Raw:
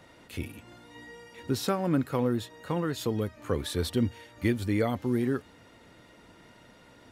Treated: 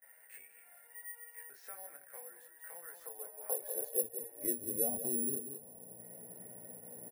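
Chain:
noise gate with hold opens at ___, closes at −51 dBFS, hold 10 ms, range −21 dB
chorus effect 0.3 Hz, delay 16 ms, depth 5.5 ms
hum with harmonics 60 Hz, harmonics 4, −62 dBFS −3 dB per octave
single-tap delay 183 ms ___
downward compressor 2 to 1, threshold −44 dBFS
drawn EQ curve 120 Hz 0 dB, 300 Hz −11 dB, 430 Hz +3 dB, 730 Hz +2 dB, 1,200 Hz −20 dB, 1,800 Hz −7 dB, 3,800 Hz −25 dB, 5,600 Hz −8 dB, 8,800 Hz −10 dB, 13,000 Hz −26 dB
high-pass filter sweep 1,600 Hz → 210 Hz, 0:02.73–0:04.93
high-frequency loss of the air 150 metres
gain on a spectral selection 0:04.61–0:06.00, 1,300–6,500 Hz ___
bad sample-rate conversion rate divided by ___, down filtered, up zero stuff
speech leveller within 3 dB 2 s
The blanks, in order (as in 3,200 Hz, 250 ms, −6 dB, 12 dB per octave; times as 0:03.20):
−47 dBFS, −13 dB, −10 dB, 4×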